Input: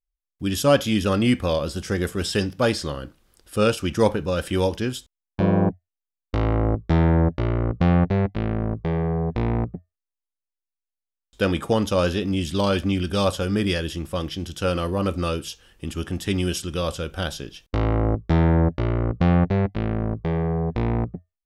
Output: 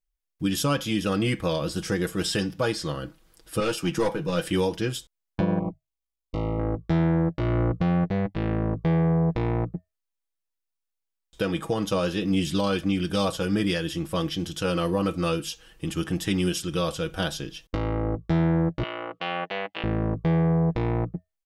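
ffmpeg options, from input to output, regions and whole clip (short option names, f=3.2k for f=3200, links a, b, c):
-filter_complex "[0:a]asettb=1/sr,asplit=3[a][b][c];[a]atrim=end=3.604[d];[b]atrim=start=3.6:end=4.44,asetpts=PTS-STARTPTS,afade=t=in:d=0.004:c=qsin,afade=t=out:st=0.836:d=0.004:c=qsin,highpass=f=120:w=0.5412,highpass=f=120:w=1.3066,asplit=2[e][f];[f]adelay=12,volume=-9dB[g];[e][g]amix=inputs=2:normalize=0,atrim=end_sample=37044,aeval=exprs='(tanh(6.31*val(0)+0.25)-tanh(0.25))/6.31':c=same[h];[c]atrim=start=4.436[i];[d][h]acrossfade=d=0.004:c1=hsin:c2=qsin[j];[j][i]acrossfade=d=0.004:c1=qsin:c2=hsin,asettb=1/sr,asplit=3[k][l][m];[k]atrim=end=5.594[n];[l]atrim=start=5.59:end=6.59,asetpts=PTS-STARTPTS,afade=t=in:d=0.004:c=qsin,afade=t=out:st=0.996:d=0.004:c=qsin,acompressor=threshold=-24dB:ratio=1.5:attack=3.2:release=140:knee=1:detection=peak,asuperstop=centerf=1600:order=20:qfactor=2.5,tremolo=f=55:d=0.621[o];[m]atrim=start=6.586[p];[n][o]acrossfade=d=0.004:c1=hsin:c2=qsin[q];[q][p]acrossfade=d=0.004:c1=qsin:c2=hsin,asettb=1/sr,asplit=3[r][s][t];[r]atrim=end=18.834[u];[s]atrim=start=18.83:end=19.84,asetpts=PTS-STARTPTS,afade=t=in:d=0.004:c=qsin,afade=t=out:st=1.006:d=0.004:c=qsin,highpass=690,lowpass=5.1k,equalizer=f=2.9k:t=o:w=0.54:g=12[v];[t]atrim=start=19.836[w];[u][v]acrossfade=d=0.004:c1=hsin:c2=qsin[x];[x][w]acrossfade=d=0.004:c1=qsin:c2=hsin,aecho=1:1:6.2:0.63,alimiter=limit=-15dB:level=0:latency=1:release=361"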